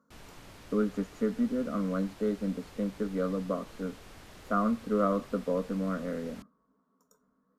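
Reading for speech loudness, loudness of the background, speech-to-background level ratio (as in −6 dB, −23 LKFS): −32.0 LKFS, −51.0 LKFS, 19.0 dB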